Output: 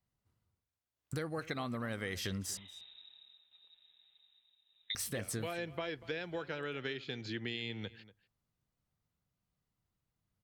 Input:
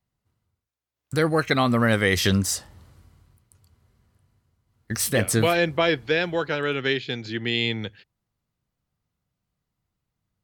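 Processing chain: 2.57–4.95 inverted band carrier 3800 Hz; compressor 6:1, threshold -31 dBFS, peak gain reduction 14.5 dB; outdoor echo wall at 41 m, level -18 dB; gain -5.5 dB

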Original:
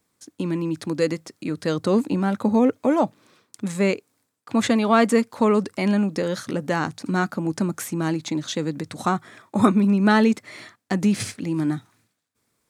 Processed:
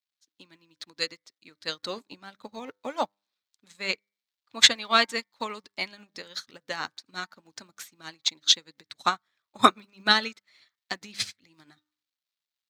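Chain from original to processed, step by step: crackle 560/s -47 dBFS; tilt shelf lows -9 dB, about 710 Hz; de-hum 100.7 Hz, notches 23; harmonic-percussive split percussive +6 dB; fifteen-band EQ 100 Hz +6 dB, 4000 Hz +8 dB, 10000 Hz -10 dB; upward expander 2.5:1, over -34 dBFS; gain -2.5 dB

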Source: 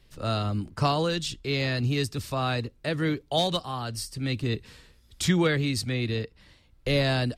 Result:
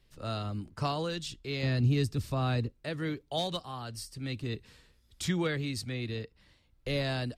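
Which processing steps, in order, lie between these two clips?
1.63–2.72 low shelf 390 Hz +9.5 dB; gain -7.5 dB

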